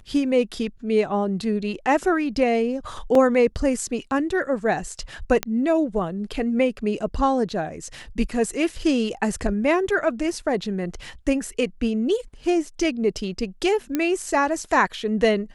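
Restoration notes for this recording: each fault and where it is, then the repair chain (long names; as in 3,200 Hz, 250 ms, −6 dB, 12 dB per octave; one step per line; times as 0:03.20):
0:03.15: drop-out 2.8 ms
0:05.43: click −7 dBFS
0:13.95: click −10 dBFS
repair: click removal
repair the gap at 0:03.15, 2.8 ms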